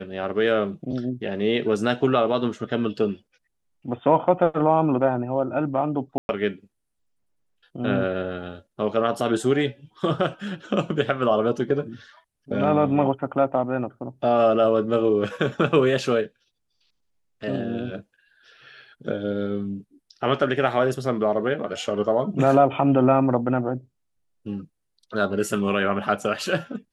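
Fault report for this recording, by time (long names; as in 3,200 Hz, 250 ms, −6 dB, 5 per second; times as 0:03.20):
0:06.18–0:06.29: drop-out 111 ms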